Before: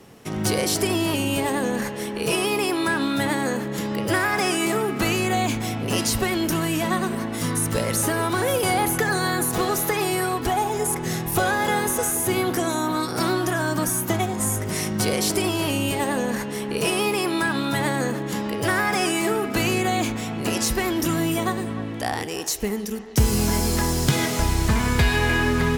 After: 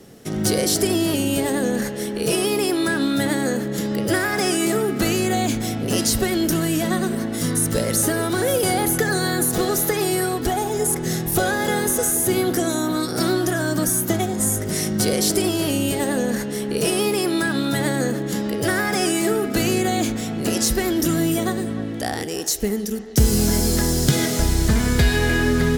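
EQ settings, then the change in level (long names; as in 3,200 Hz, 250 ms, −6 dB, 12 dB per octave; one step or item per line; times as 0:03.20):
graphic EQ with 15 bands 100 Hz −4 dB, 1,000 Hz −11 dB, 2,500 Hz −7 dB
+4.0 dB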